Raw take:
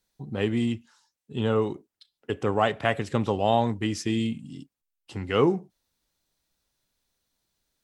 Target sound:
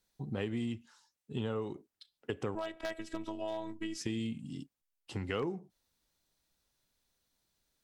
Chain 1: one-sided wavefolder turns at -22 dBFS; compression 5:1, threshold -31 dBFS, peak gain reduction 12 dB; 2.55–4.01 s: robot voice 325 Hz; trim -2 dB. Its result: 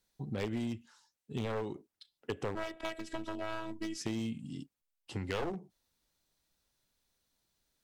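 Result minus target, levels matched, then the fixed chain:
one-sided wavefolder: distortion +21 dB
one-sided wavefolder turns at -11 dBFS; compression 5:1, threshold -31 dBFS, peak gain reduction 13.5 dB; 2.55–4.01 s: robot voice 325 Hz; trim -2 dB

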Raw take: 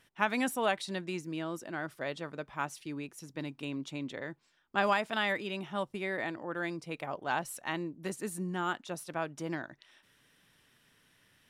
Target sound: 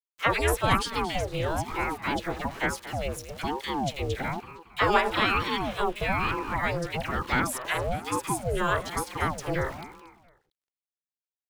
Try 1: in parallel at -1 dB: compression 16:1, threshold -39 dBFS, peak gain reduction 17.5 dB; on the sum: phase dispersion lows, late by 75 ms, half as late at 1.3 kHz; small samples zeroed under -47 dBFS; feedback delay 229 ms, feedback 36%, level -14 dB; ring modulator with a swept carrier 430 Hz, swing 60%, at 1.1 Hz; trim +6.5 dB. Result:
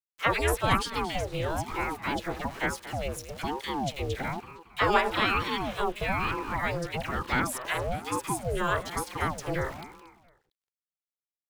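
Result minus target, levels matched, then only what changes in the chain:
compression: peak gain reduction +6 dB
change: compression 16:1, threshold -32.5 dBFS, peak gain reduction 11.5 dB

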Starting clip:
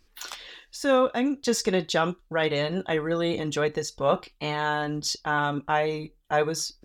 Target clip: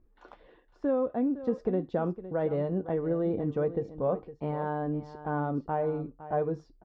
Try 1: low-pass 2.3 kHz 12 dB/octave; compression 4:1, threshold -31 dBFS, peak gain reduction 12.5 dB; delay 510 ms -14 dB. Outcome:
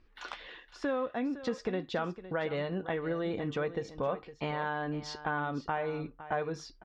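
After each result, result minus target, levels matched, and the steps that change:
2 kHz band +12.5 dB; compression: peak gain reduction +7 dB
change: low-pass 630 Hz 12 dB/octave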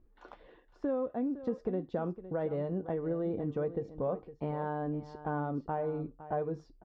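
compression: peak gain reduction +5.5 dB
change: compression 4:1, threshold -24 dBFS, peak gain reduction 5.5 dB

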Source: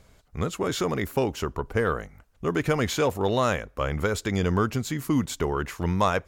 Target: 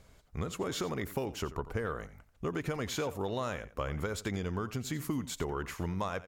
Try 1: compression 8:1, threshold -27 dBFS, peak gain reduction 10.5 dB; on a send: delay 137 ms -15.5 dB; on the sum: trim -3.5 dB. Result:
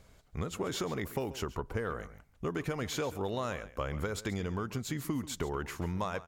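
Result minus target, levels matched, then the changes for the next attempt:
echo 49 ms late
change: delay 88 ms -15.5 dB

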